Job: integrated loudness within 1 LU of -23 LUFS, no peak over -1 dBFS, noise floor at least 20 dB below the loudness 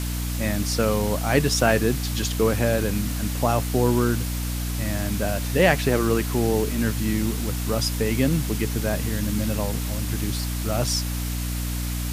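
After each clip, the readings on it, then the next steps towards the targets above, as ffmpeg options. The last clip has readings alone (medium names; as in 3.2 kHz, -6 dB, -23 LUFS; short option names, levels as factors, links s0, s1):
hum 60 Hz; highest harmonic 300 Hz; hum level -25 dBFS; noise floor -27 dBFS; noise floor target -44 dBFS; loudness -23.5 LUFS; peak level -3.0 dBFS; loudness target -23.0 LUFS
-> -af "bandreject=f=60:t=h:w=4,bandreject=f=120:t=h:w=4,bandreject=f=180:t=h:w=4,bandreject=f=240:t=h:w=4,bandreject=f=300:t=h:w=4"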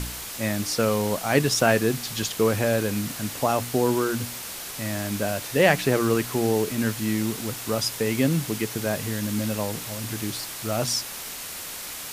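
hum not found; noise floor -36 dBFS; noise floor target -45 dBFS
-> -af "afftdn=nr=9:nf=-36"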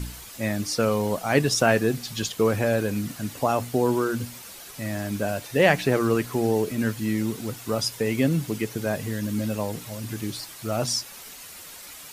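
noise floor -43 dBFS; noise floor target -46 dBFS
-> -af "afftdn=nr=6:nf=-43"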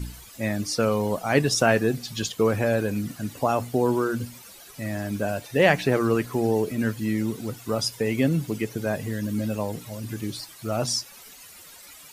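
noise floor -47 dBFS; loudness -25.5 LUFS; peak level -4.0 dBFS; loudness target -23.0 LUFS
-> -af "volume=1.33"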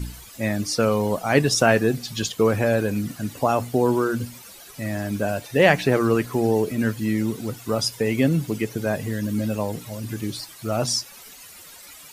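loudness -23.0 LUFS; peak level -1.5 dBFS; noise floor -44 dBFS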